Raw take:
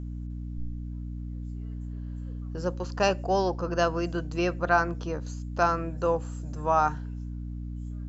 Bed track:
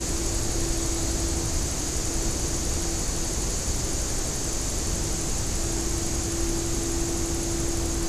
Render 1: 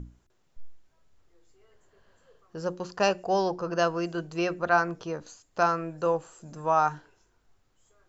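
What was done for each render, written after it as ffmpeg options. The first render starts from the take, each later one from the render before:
-af "bandreject=f=60:t=h:w=6,bandreject=f=120:t=h:w=6,bandreject=f=180:t=h:w=6,bandreject=f=240:t=h:w=6,bandreject=f=300:t=h:w=6,bandreject=f=360:t=h:w=6"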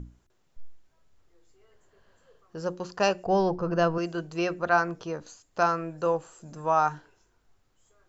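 -filter_complex "[0:a]asettb=1/sr,asplit=3[a][b][c];[a]atrim=end=3.254[d];[b]atrim=start=3.25:end=3.98,asetpts=PTS-STARTPTS,afade=t=in:d=0.004:c=qsin,afade=t=out:st=0.726:d=0.004:c=qsin,aemphasis=mode=reproduction:type=bsi[e];[c]atrim=start=3.976[f];[d][e]acrossfade=d=0.004:c1=hsin:c2=qsin[g];[g][f]acrossfade=d=0.004:c1=qsin:c2=hsin"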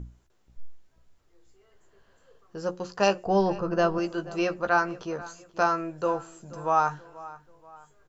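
-filter_complex "[0:a]asplit=2[a][b];[b]adelay=15,volume=-8dB[c];[a][c]amix=inputs=2:normalize=0,asplit=2[d][e];[e]adelay=482,lowpass=f=4k:p=1,volume=-18.5dB,asplit=2[f][g];[g]adelay=482,lowpass=f=4k:p=1,volume=0.42,asplit=2[h][i];[i]adelay=482,lowpass=f=4k:p=1,volume=0.42[j];[d][f][h][j]amix=inputs=4:normalize=0"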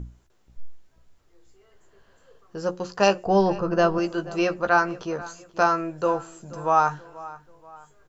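-af "volume=3.5dB"

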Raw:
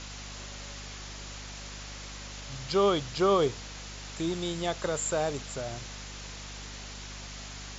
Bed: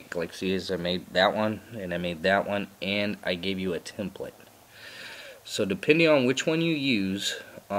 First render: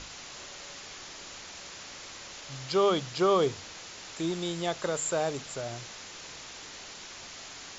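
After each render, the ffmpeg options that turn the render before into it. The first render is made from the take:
-af "bandreject=f=50:t=h:w=6,bandreject=f=100:t=h:w=6,bandreject=f=150:t=h:w=6,bandreject=f=200:t=h:w=6,bandreject=f=250:t=h:w=6"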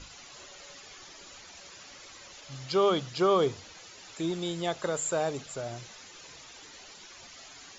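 -af "afftdn=nr=10:nf=-45"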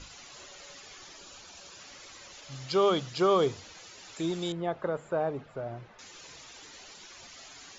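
-filter_complex "[0:a]asettb=1/sr,asplit=3[a][b][c];[a]atrim=end=1.184[d];[b]atrim=start=1.18:end=1.78,asetpts=PTS-STARTPTS,afade=t=in:d=0.004:c=qsin,afade=t=out:st=0.596:d=0.004:c=qsin,equalizer=f=2k:t=o:w=0.21:g=-9.5[e];[c]atrim=start=1.776[f];[d][e]acrossfade=d=0.004:c1=hsin:c2=qsin[g];[g][f]acrossfade=d=0.004:c1=qsin:c2=hsin,asettb=1/sr,asplit=3[h][i][j];[h]atrim=end=4.524[k];[i]atrim=start=4.52:end=5.99,asetpts=PTS-STARTPTS,afade=t=in:d=0.004:c=qsin,afade=t=out:st=1.466:d=0.004:c=qsin,lowpass=1.5k[l];[j]atrim=start=5.986[m];[k][l]acrossfade=d=0.004:c1=hsin:c2=qsin[n];[n][m]acrossfade=d=0.004:c1=qsin:c2=hsin"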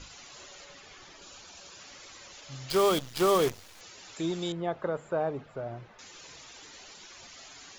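-filter_complex "[0:a]asettb=1/sr,asplit=3[a][b][c];[a]atrim=end=0.644[d];[b]atrim=start=0.64:end=1.22,asetpts=PTS-STARTPTS,afade=t=in:d=0.004:c=qsin,afade=t=out:st=0.576:d=0.004:c=qsin,bass=f=250:g=2,treble=f=4k:g=-6[e];[c]atrim=start=1.216[f];[d][e]acrossfade=d=0.004:c1=hsin:c2=qsin[g];[g][f]acrossfade=d=0.004:c1=qsin:c2=hsin,asettb=1/sr,asplit=3[h][i][j];[h]atrim=end=2.704[k];[i]atrim=start=2.7:end=3.81,asetpts=PTS-STARTPTS,afade=t=in:d=0.004:c=qsin,afade=t=out:st=1.106:d=0.004:c=qsin,acrusher=bits=6:dc=4:mix=0:aa=0.000001[l];[j]atrim=start=3.806[m];[k][l]acrossfade=d=0.004:c1=hsin:c2=qsin[n];[n][m]acrossfade=d=0.004:c1=qsin:c2=hsin"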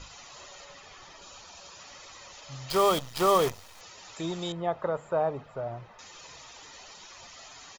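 -af "equalizer=f=940:w=4.1:g=9.5,aecho=1:1:1.6:0.32"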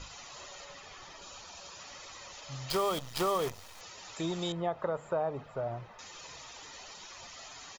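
-af "acompressor=threshold=-29dB:ratio=3"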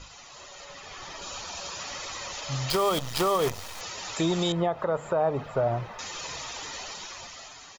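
-af "alimiter=level_in=3dB:limit=-24dB:level=0:latency=1:release=204,volume=-3dB,dynaudnorm=f=270:g=7:m=11dB"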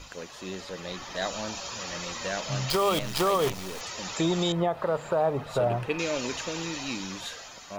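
-filter_complex "[1:a]volume=-10dB[a];[0:a][a]amix=inputs=2:normalize=0"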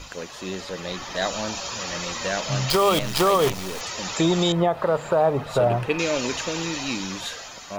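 -af "volume=5.5dB"

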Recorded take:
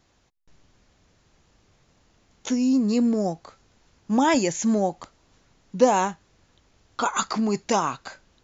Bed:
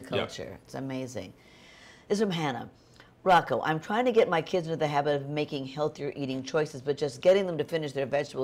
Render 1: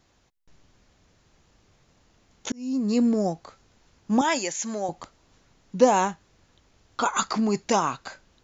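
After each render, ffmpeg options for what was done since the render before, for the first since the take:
-filter_complex "[0:a]asettb=1/sr,asplit=3[a][b][c];[a]atrim=end=4.214[d];[b]atrim=start=4.21:end=4.89,asetpts=PTS-STARTPTS,afade=t=in:d=0.004:c=qsin,afade=t=out:st=0.676:d=0.004:c=qsin,highpass=f=870:p=1[e];[c]atrim=start=4.886[f];[d][e]acrossfade=d=0.004:c1=hsin:c2=qsin[g];[g][f]acrossfade=d=0.004:c1=qsin:c2=hsin,asplit=2[h][i];[h]atrim=end=2.52,asetpts=PTS-STARTPTS,afade=t=out:st=2.516:d=0.004:c=hsin[j];[i]atrim=start=2.52,asetpts=PTS-STARTPTS,afade=t=in:d=0.46[k];[j][k]concat=n=2:v=0:a=1"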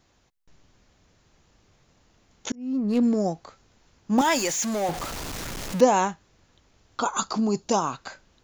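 -filter_complex "[0:a]asettb=1/sr,asplit=3[a][b][c];[a]atrim=end=2.554[d];[b]atrim=start=2.55:end=3.03,asetpts=PTS-STARTPTS,afade=t=in:d=0.004:c=qsin,afade=t=out:st=0.476:d=0.004:c=qsin,adynamicsmooth=sensitivity=4:basefreq=1.2k[e];[c]atrim=start=3.026[f];[d][e]acrossfade=d=0.004:c1=hsin:c2=qsin[g];[g][f]acrossfade=d=0.004:c1=qsin:c2=hsin,asettb=1/sr,asplit=3[h][i][j];[h]atrim=end=4.184[k];[i]atrim=start=4.18:end=5.81,asetpts=PTS-STARTPTS,afade=t=in:d=0.004:c=qsin,afade=t=out:st=1.626:d=0.004:c=qsin,aeval=exprs='val(0)+0.5*0.0398*sgn(val(0))':c=same[l];[j]atrim=start=5.806[m];[k][l]acrossfade=d=0.004:c1=hsin:c2=qsin[n];[n][m]acrossfade=d=0.004:c1=qsin:c2=hsin,asettb=1/sr,asplit=3[o][p][q];[o]atrim=end=7.004[r];[p]atrim=start=7:end=7.93,asetpts=PTS-STARTPTS,afade=t=in:d=0.004:c=qsin,afade=t=out:st=0.926:d=0.004:c=qsin,equalizer=f=2k:t=o:w=0.73:g=-12.5[s];[q]atrim=start=7.926[t];[r][s]acrossfade=d=0.004:c1=hsin:c2=qsin[u];[u][t]acrossfade=d=0.004:c1=qsin:c2=hsin"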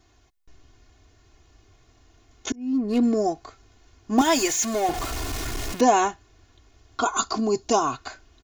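-af "equalizer=f=70:t=o:w=2.5:g=5,aecho=1:1:2.8:0.85"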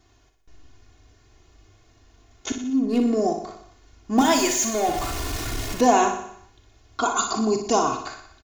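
-filter_complex "[0:a]asplit=2[a][b];[b]adelay=41,volume=-11dB[c];[a][c]amix=inputs=2:normalize=0,asplit=2[d][e];[e]aecho=0:1:60|120|180|240|300|360|420:0.398|0.227|0.129|0.0737|0.042|0.024|0.0137[f];[d][f]amix=inputs=2:normalize=0"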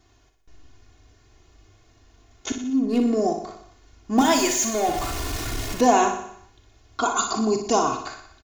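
-af anull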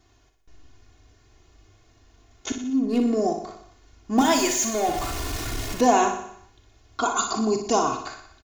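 -af "volume=-1dB"

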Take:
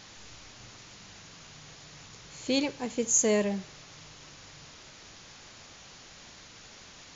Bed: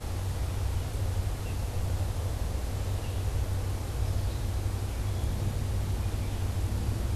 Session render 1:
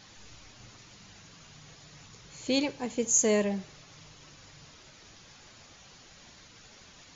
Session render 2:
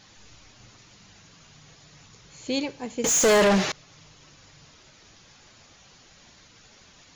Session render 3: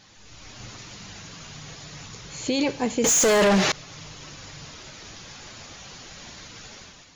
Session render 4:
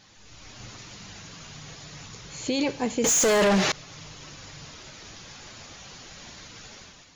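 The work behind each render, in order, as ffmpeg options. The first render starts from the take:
-af "afftdn=nr=6:nf=-51"
-filter_complex "[0:a]asettb=1/sr,asplit=3[a][b][c];[a]atrim=end=3.044[d];[b]atrim=start=3.04:end=3.72,asetpts=PTS-STARTPTS,afade=t=in:d=0.004:c=qsin,afade=t=out:st=0.676:d=0.004:c=qsin,asplit=2[e][f];[f]highpass=f=720:p=1,volume=35dB,asoftclip=type=tanh:threshold=-11dB[g];[e][g]amix=inputs=2:normalize=0,lowpass=f=4.1k:p=1,volume=-6dB[h];[c]atrim=start=3.716[i];[d][h]acrossfade=d=0.004:c1=hsin:c2=qsin[j];[j][i]acrossfade=d=0.004:c1=qsin:c2=hsin"
-af "dynaudnorm=f=120:g=7:m=11dB,alimiter=limit=-14.5dB:level=0:latency=1:release=26"
-af "volume=-2dB"

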